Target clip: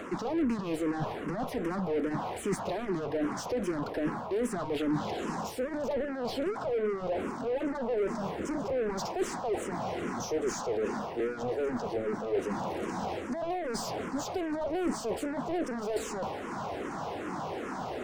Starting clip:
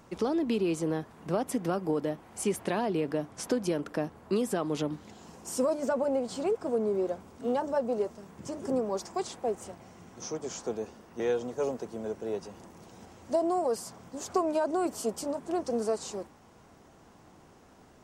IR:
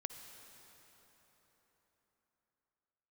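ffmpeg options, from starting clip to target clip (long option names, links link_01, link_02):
-filter_complex "[0:a]asplit=2[link_01][link_02];[link_02]highpass=frequency=720:poles=1,volume=31dB,asoftclip=type=tanh:threshold=-16.5dB[link_03];[link_01][link_03]amix=inputs=2:normalize=0,lowpass=frequency=1100:poles=1,volume=-6dB,areverse,acompressor=threshold=-33dB:ratio=6,areverse,tremolo=f=190:d=0.261,bandreject=frequency=222.5:width_type=h:width=4,bandreject=frequency=445:width_type=h:width=4,bandreject=frequency=667.5:width_type=h:width=4,bandreject=frequency=890:width_type=h:width=4,bandreject=frequency=1112.5:width_type=h:width=4,bandreject=frequency=1335:width_type=h:width=4,bandreject=frequency=1557.5:width_type=h:width=4,bandreject=frequency=1780:width_type=h:width=4,bandreject=frequency=2002.5:width_type=h:width=4,bandreject=frequency=2225:width_type=h:width=4,bandreject=frequency=2447.5:width_type=h:width=4,bandreject=frequency=2670:width_type=h:width=4,bandreject=frequency=2892.5:width_type=h:width=4,bandreject=frequency=3115:width_type=h:width=4,bandreject=frequency=3337.5:width_type=h:width=4,bandreject=frequency=3560:width_type=h:width=4,bandreject=frequency=3782.5:width_type=h:width=4,bandreject=frequency=4005:width_type=h:width=4,bandreject=frequency=4227.5:width_type=h:width=4,bandreject=frequency=4450:width_type=h:width=4,bandreject=frequency=4672.5:width_type=h:width=4,bandreject=frequency=4895:width_type=h:width=4,bandreject=frequency=5117.5:width_type=h:width=4,bandreject=frequency=5340:width_type=h:width=4,bandreject=frequency=5562.5:width_type=h:width=4,bandreject=frequency=5785:width_type=h:width=4,bandreject=frequency=6007.5:width_type=h:width=4,bandreject=frequency=6230:width_type=h:width=4,bandreject=frequency=6452.5:width_type=h:width=4,bandreject=frequency=6675:width_type=h:width=4,bandreject=frequency=6897.5:width_type=h:width=4,bandreject=frequency=7120:width_type=h:width=4,bandreject=frequency=7342.5:width_type=h:width=4,bandreject=frequency=7565:width_type=h:width=4,bandreject=frequency=7787.5:width_type=h:width=4,acrossover=split=430[link_04][link_05];[link_05]asoftclip=type=tanh:threshold=-39dB[link_06];[link_04][link_06]amix=inputs=2:normalize=0,asplit=2[link_07][link_08];[link_08]afreqshift=-2.5[link_09];[link_07][link_09]amix=inputs=2:normalize=1,volume=8.5dB"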